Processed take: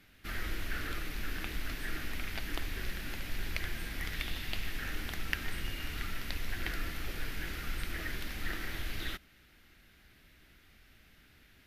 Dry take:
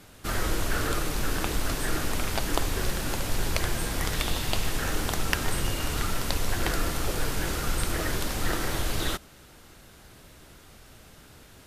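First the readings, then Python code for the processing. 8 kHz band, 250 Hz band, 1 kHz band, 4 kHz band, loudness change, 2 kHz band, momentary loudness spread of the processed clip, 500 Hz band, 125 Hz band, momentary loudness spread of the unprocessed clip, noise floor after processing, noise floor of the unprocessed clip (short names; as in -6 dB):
-16.5 dB, -12.0 dB, -14.0 dB, -9.0 dB, -10.0 dB, -6.0 dB, 3 LU, -16.0 dB, -11.0 dB, 2 LU, -62 dBFS, -52 dBFS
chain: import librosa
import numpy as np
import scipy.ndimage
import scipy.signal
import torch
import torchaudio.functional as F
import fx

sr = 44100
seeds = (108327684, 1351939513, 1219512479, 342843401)

y = fx.graphic_eq(x, sr, hz=(125, 500, 1000, 2000, 8000), db=(-6, -8, -9, 7, -12))
y = F.gain(torch.from_numpy(y), -8.0).numpy()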